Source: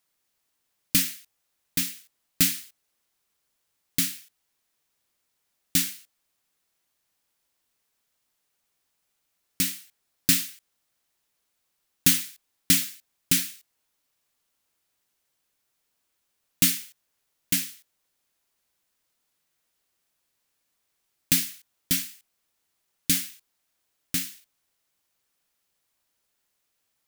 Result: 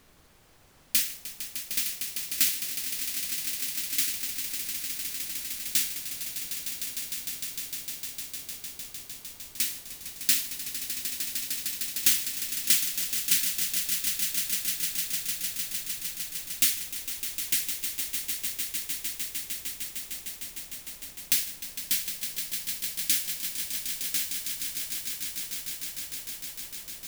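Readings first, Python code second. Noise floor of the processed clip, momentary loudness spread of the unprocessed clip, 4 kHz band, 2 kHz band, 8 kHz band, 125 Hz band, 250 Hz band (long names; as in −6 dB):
−48 dBFS, 16 LU, +1.5 dB, +0.5 dB, +2.0 dB, −13.0 dB, −13.0 dB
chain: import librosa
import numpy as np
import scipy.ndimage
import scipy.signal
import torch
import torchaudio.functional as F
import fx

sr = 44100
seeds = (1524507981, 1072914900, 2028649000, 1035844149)

y = fx.highpass(x, sr, hz=1400.0, slope=6)
y = fx.dmg_noise_colour(y, sr, seeds[0], colour='pink', level_db=-57.0)
y = fx.echo_swell(y, sr, ms=152, loudest=8, wet_db=-10)
y = F.gain(torch.from_numpy(y), -2.0).numpy()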